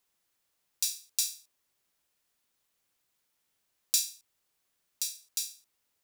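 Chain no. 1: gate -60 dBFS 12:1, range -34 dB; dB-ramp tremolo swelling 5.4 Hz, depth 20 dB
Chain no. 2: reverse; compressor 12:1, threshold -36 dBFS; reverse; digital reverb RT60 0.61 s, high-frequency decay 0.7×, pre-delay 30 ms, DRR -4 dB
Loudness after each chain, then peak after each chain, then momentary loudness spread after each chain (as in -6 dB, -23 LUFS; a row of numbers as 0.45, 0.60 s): -41.0, -37.0 LUFS; -18.5, -21.5 dBFS; 12, 9 LU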